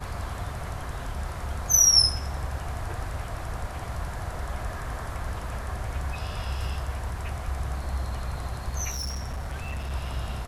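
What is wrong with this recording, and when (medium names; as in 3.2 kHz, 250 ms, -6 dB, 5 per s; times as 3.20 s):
8.90–9.91 s: clipped -28.5 dBFS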